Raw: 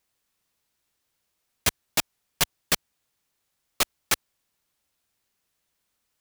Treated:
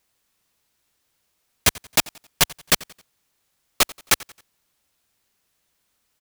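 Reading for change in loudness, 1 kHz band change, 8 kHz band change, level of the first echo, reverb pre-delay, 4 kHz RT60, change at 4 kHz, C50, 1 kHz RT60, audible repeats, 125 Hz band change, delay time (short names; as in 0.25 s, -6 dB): +5.5 dB, +5.5 dB, +5.5 dB, -22.0 dB, none, none, +5.5 dB, none, none, 2, +5.5 dB, 89 ms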